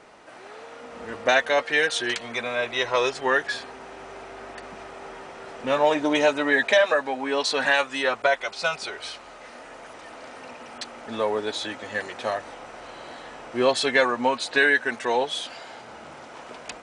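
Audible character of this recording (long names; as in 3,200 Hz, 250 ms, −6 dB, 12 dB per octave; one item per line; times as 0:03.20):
background noise floor −44 dBFS
spectral slope −2.5 dB per octave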